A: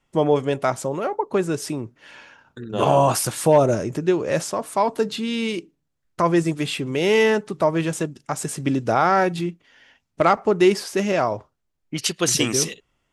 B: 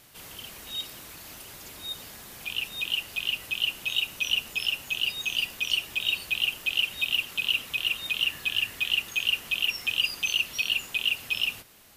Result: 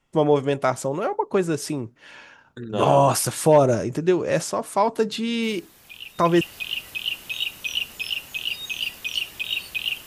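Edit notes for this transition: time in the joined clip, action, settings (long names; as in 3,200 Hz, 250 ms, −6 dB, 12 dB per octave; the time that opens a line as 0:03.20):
A
0:05.43: mix in B from 0:01.99 0.98 s −8 dB
0:06.41: continue with B from 0:02.97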